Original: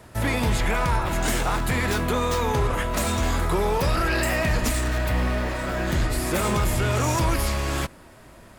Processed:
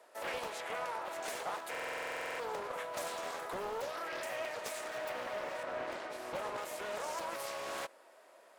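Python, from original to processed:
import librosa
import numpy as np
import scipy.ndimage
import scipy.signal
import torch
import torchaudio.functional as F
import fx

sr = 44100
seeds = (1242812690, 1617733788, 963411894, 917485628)

y = fx.ladder_highpass(x, sr, hz=440.0, resonance_pct=40)
y = fx.rider(y, sr, range_db=10, speed_s=0.5)
y = fx.lowpass(y, sr, hz=2900.0, slope=6, at=(5.63, 6.58))
y = fx.buffer_glitch(y, sr, at_s=(1.7,), block=2048, repeats=14)
y = fx.doppler_dist(y, sr, depth_ms=0.39)
y = y * 10.0 ** (-6.5 / 20.0)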